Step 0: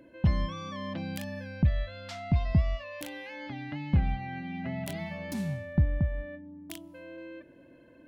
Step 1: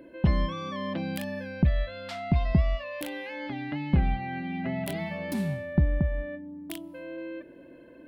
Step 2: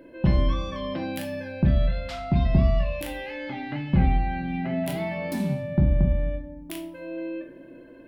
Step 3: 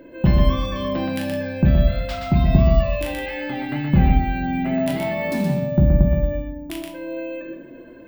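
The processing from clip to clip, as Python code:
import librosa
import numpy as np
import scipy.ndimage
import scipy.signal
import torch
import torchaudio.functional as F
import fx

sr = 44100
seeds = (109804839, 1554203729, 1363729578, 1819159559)

y1 = fx.graphic_eq_15(x, sr, hz=(100, 400, 6300), db=(-8, 5, -7))
y1 = y1 * librosa.db_to_amplitude(4.0)
y2 = fx.room_shoebox(y1, sr, seeds[0], volume_m3=63.0, walls='mixed', distance_m=0.62)
y3 = y2 + 10.0 ** (-4.5 / 20.0) * np.pad(y2, (int(123 * sr / 1000.0), 0))[:len(y2)]
y3 = np.repeat(scipy.signal.resample_poly(y3, 1, 2), 2)[:len(y3)]
y3 = y3 * librosa.db_to_amplitude(4.5)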